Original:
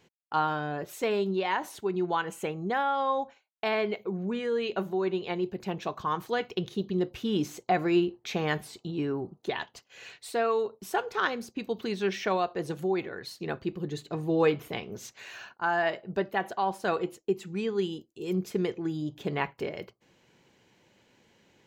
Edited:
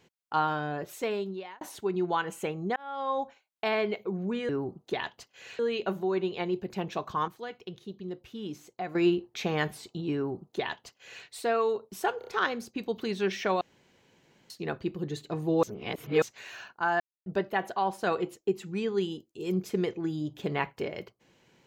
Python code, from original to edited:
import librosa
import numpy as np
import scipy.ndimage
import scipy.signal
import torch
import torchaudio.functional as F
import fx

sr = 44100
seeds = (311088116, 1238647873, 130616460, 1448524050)

y = fx.edit(x, sr, fx.fade_out_span(start_s=0.58, length_s=1.03, curve='qsin'),
    fx.fade_in_span(start_s=2.76, length_s=0.46),
    fx.clip_gain(start_s=6.18, length_s=1.67, db=-10.0),
    fx.duplicate(start_s=9.05, length_s=1.1, to_s=4.49),
    fx.stutter(start_s=11.08, slice_s=0.03, count=4),
    fx.room_tone_fill(start_s=12.42, length_s=0.89),
    fx.reverse_span(start_s=14.44, length_s=0.59),
    fx.silence(start_s=15.81, length_s=0.26), tone=tone)